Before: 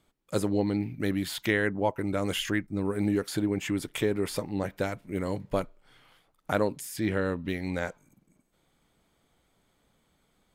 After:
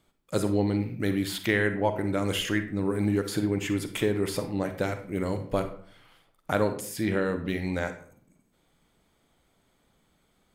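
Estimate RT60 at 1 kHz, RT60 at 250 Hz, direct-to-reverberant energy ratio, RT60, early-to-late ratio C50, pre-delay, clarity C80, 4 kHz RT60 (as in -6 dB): 0.55 s, 0.55 s, 8.0 dB, 0.55 s, 9.5 dB, 38 ms, 14.0 dB, 0.35 s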